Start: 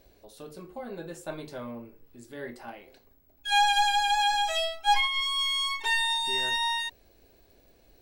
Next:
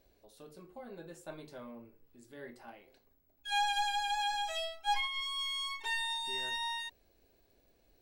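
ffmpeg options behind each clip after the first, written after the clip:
-af "bandreject=f=60:t=h:w=6,bandreject=f=120:t=h:w=6,volume=-9dB"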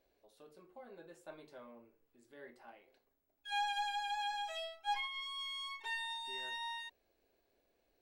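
-af "bass=f=250:g=-10,treble=f=4k:g=-6,volume=-4.5dB"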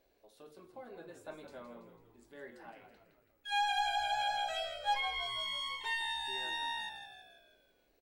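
-filter_complex "[0:a]asplit=7[a][b][c][d][e][f][g];[b]adelay=165,afreqshift=-62,volume=-9dB[h];[c]adelay=330,afreqshift=-124,volume=-14.8dB[i];[d]adelay=495,afreqshift=-186,volume=-20.7dB[j];[e]adelay=660,afreqshift=-248,volume=-26.5dB[k];[f]adelay=825,afreqshift=-310,volume=-32.4dB[l];[g]adelay=990,afreqshift=-372,volume=-38.2dB[m];[a][h][i][j][k][l][m]amix=inputs=7:normalize=0,volume=4dB"

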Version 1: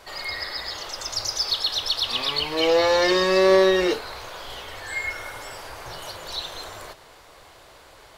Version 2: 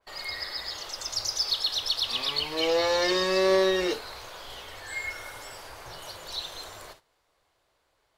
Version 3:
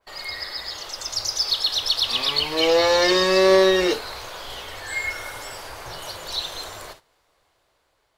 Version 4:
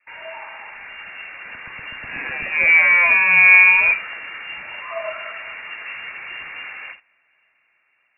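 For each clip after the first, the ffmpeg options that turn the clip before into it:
-af "agate=range=-17dB:threshold=-44dB:ratio=16:detection=peak,adynamicequalizer=threshold=0.0112:dfrequency=3100:dqfactor=0.7:tfrequency=3100:tqfactor=0.7:attack=5:release=100:ratio=0.375:range=2:mode=boostabove:tftype=highshelf,volume=-6dB"
-af "dynaudnorm=f=660:g=5:m=4dB,volume=3dB"
-af "lowpass=f=2.4k:t=q:w=0.5098,lowpass=f=2.4k:t=q:w=0.6013,lowpass=f=2.4k:t=q:w=0.9,lowpass=f=2.4k:t=q:w=2.563,afreqshift=-2800,highshelf=f=2k:g=11.5,volume=-1.5dB"

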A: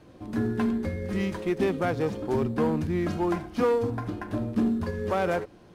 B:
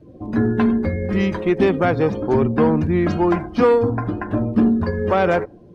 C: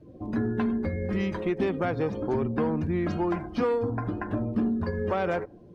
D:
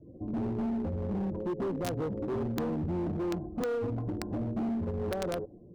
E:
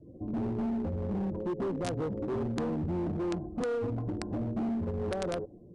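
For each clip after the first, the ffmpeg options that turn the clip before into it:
-af "afftdn=nr=19:nf=-49,volume=9dB"
-af "acompressor=threshold=-22dB:ratio=2,volume=-5dB"
-filter_complex "[0:a]acrossover=split=720[a][b];[a]asoftclip=type=hard:threshold=-27.5dB[c];[b]acrusher=bits=3:mix=0:aa=0.000001[d];[c][d]amix=inputs=2:normalize=0,volume=-1.5dB"
-af "aresample=22050,aresample=44100"

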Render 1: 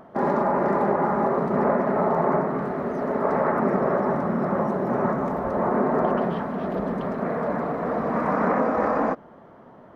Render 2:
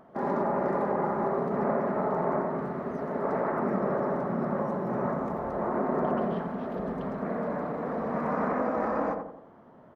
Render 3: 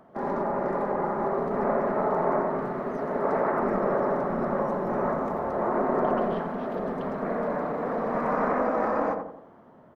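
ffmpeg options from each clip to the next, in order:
-filter_complex "[0:a]asplit=2[a][b];[b]adelay=86,lowpass=f=1.1k:p=1,volume=-3.5dB,asplit=2[c][d];[d]adelay=86,lowpass=f=1.1k:p=1,volume=0.51,asplit=2[e][f];[f]adelay=86,lowpass=f=1.1k:p=1,volume=0.51,asplit=2[g][h];[h]adelay=86,lowpass=f=1.1k:p=1,volume=0.51,asplit=2[i][j];[j]adelay=86,lowpass=f=1.1k:p=1,volume=0.51,asplit=2[k][l];[l]adelay=86,lowpass=f=1.1k:p=1,volume=0.51,asplit=2[m][n];[n]adelay=86,lowpass=f=1.1k:p=1,volume=0.51[o];[a][c][e][g][i][k][m][o]amix=inputs=8:normalize=0,volume=-7.5dB"
-filter_complex "[0:a]acrossover=split=270[a][b];[a]aeval=exprs='clip(val(0),-1,0.00944)':c=same[c];[b]dynaudnorm=f=610:g=5:m=4dB[d];[c][d]amix=inputs=2:normalize=0"

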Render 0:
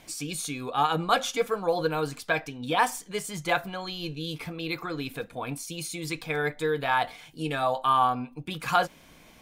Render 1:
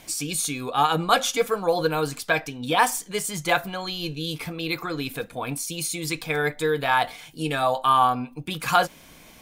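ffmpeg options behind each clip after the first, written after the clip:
-af "highshelf=f=5.6k:g=6.5,volume=3.5dB"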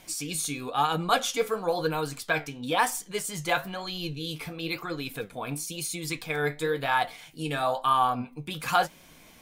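-af "flanger=delay=5.3:depth=8.7:regen=67:speed=1:shape=sinusoidal"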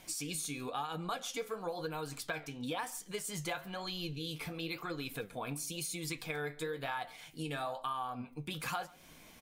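-filter_complex "[0:a]acompressor=threshold=-32dB:ratio=6,asplit=2[a][b];[b]adelay=139.9,volume=-23dB,highshelf=f=4k:g=-3.15[c];[a][c]amix=inputs=2:normalize=0,volume=-3.5dB"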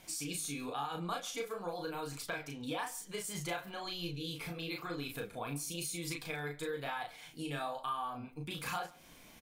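-filter_complex "[0:a]asplit=2[a][b];[b]adelay=35,volume=-3.5dB[c];[a][c]amix=inputs=2:normalize=0,volume=-2dB"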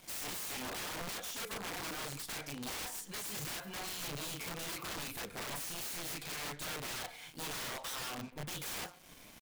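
-af "acrusher=bits=8:mix=0:aa=0.5,aeval=exprs='(mod(75*val(0)+1,2)-1)/75':c=same,volume=1.5dB"

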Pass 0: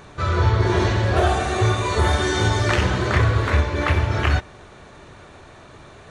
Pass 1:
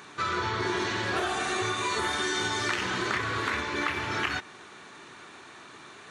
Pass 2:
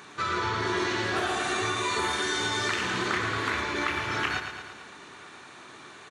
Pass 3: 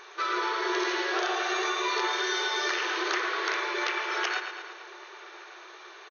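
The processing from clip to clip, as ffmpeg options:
-af "highpass=310,equalizer=f=580:w=1.6:g=-12.5,acompressor=threshold=-27dB:ratio=6,volume=1.5dB"
-af "aecho=1:1:112|224|336|448|560|672|784|896:0.398|0.239|0.143|0.086|0.0516|0.031|0.0186|0.0111"
-filter_complex "[0:a]asplit=2[a][b];[b]adelay=1166,volume=-19dB,highshelf=f=4k:g=-26.2[c];[a][c]amix=inputs=2:normalize=0,aeval=exprs='(mod(7.5*val(0)+1,2)-1)/7.5':c=same,afftfilt=real='re*between(b*sr/4096,330,6600)':imag='im*between(b*sr/4096,330,6600)':win_size=4096:overlap=0.75"

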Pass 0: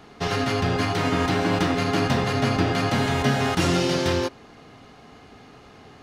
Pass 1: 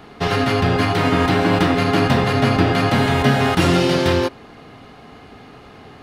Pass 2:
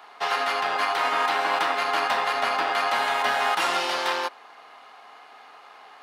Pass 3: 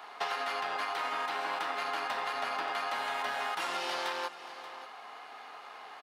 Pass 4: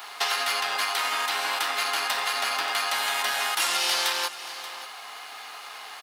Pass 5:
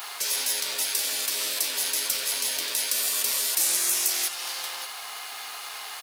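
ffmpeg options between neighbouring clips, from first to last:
-af "equalizer=f=6.3k:t=o:w=0.75:g=-7,volume=6dB"
-af "aeval=exprs='if(lt(val(0),0),0.708*val(0),val(0))':c=same,highpass=f=890:t=q:w=1.7,volume=-3.5dB"
-af "acompressor=threshold=-31dB:ratio=10,aecho=1:1:581:0.188"
-af "crystalizer=i=9:c=0"
-af "afftfilt=real='re*lt(hypot(re,im),0.0631)':imag='im*lt(hypot(re,im),0.0631)':win_size=1024:overlap=0.75,crystalizer=i=2:c=0"

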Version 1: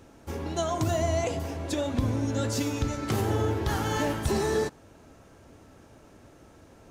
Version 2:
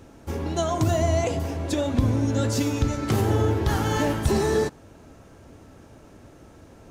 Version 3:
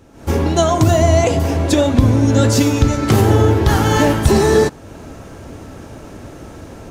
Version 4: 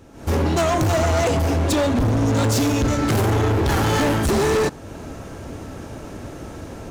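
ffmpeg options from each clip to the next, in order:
-af "lowshelf=f=390:g=3.5,volume=2.5dB"
-af "dynaudnorm=f=130:g=3:m=14dB"
-af "volume=16.5dB,asoftclip=hard,volume=-16.5dB"

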